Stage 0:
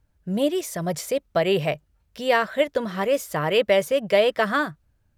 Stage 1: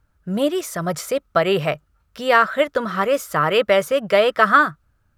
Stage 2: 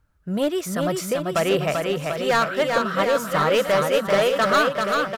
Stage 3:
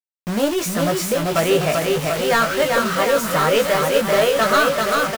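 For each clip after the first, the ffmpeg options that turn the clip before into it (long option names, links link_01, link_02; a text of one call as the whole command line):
ffmpeg -i in.wav -af "equalizer=frequency=1300:width=3:gain=13,volume=2dB" out.wav
ffmpeg -i in.wav -filter_complex "[0:a]asoftclip=type=hard:threshold=-13.5dB,asplit=2[link_01][link_02];[link_02]aecho=0:1:390|741|1057|1341|1597:0.631|0.398|0.251|0.158|0.1[link_03];[link_01][link_03]amix=inputs=2:normalize=0,volume=-2dB" out.wav
ffmpeg -i in.wav -filter_complex "[0:a]aeval=exprs='val(0)+0.5*0.0473*sgn(val(0))':channel_layout=same,acrusher=bits=4:mix=0:aa=0.000001,asplit=2[link_01][link_02];[link_02]adelay=18,volume=-5dB[link_03];[link_01][link_03]amix=inputs=2:normalize=0" out.wav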